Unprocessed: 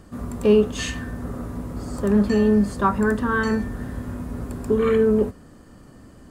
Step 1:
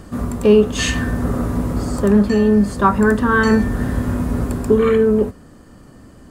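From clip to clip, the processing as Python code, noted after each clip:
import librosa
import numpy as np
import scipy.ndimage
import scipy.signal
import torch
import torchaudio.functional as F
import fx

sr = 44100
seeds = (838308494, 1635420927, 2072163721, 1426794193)

y = fx.rider(x, sr, range_db=4, speed_s=0.5)
y = y * 10.0 ** (7.0 / 20.0)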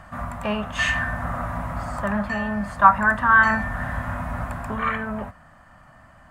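y = fx.curve_eq(x, sr, hz=(160.0, 440.0, 630.0, 1900.0, 4600.0), db=(0, -17, 10, 12, -4))
y = y * 10.0 ** (-8.5 / 20.0)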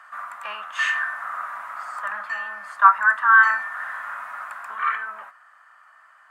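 y = fx.highpass_res(x, sr, hz=1300.0, q=2.5)
y = y * 10.0 ** (-4.5 / 20.0)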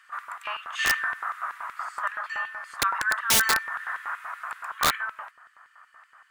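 y = fx.filter_lfo_highpass(x, sr, shape='square', hz=5.3, low_hz=720.0, high_hz=2800.0, q=1.1)
y = (np.mod(10.0 ** (14.0 / 20.0) * y + 1.0, 2.0) - 1.0) / 10.0 ** (14.0 / 20.0)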